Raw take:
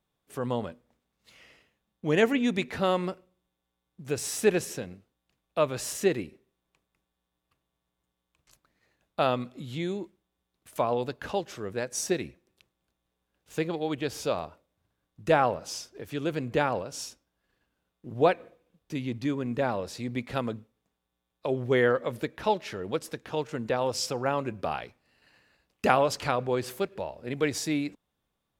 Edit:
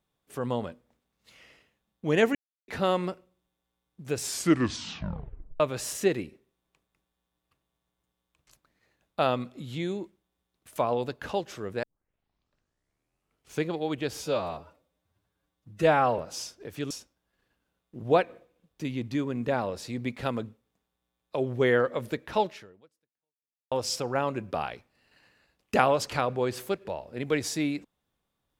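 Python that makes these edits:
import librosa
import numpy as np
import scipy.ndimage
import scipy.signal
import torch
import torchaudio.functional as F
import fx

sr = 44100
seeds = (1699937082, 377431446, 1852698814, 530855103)

y = fx.edit(x, sr, fx.silence(start_s=2.35, length_s=0.33),
    fx.tape_stop(start_s=4.19, length_s=1.41),
    fx.tape_start(start_s=11.83, length_s=1.84),
    fx.stretch_span(start_s=14.22, length_s=1.31, factor=1.5),
    fx.cut(start_s=16.25, length_s=0.76),
    fx.fade_out_span(start_s=22.59, length_s=1.23, curve='exp'), tone=tone)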